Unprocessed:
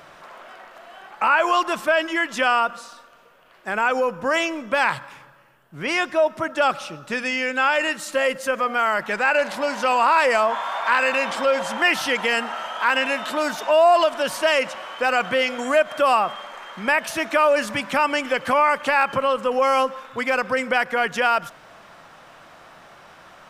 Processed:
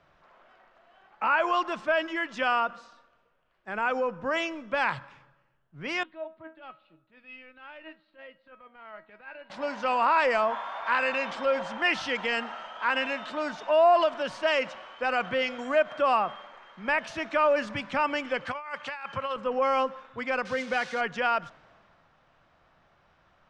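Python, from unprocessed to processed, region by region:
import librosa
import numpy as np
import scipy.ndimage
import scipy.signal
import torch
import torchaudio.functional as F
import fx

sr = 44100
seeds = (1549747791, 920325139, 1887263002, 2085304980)

y = fx.chain(x, sr, fx.cheby1_lowpass(hz=4200.0, order=5),
    fx.transient(attack_db=-9, sustain_db=-5),
    fx.comb_fb(f0_hz=320.0, decay_s=0.27, harmonics='all', damping=0.0, mix_pct=80), at=(6.03, 9.5))
y = fx.chain(y, sr, fx.highpass(hz=74.0, slope=12),
    fx.peak_eq(hz=310.0, db=-11.5, octaves=2.2),
    fx.over_compress(threshold_db=-24.0, ratio=-0.5), at=(18.46, 19.36))
y = fx.chain(y, sr, fx.crossing_spikes(level_db=-15.0),
    fx.notch_comb(f0_hz=330.0),
    fx.resample_bad(factor=3, down='filtered', up='hold'), at=(20.45, 21.01))
y = scipy.signal.sosfilt(scipy.signal.bessel(4, 4400.0, 'lowpass', norm='mag', fs=sr, output='sos'), y)
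y = fx.low_shelf(y, sr, hz=160.0, db=6.0)
y = fx.band_widen(y, sr, depth_pct=40)
y = y * 10.0 ** (-7.0 / 20.0)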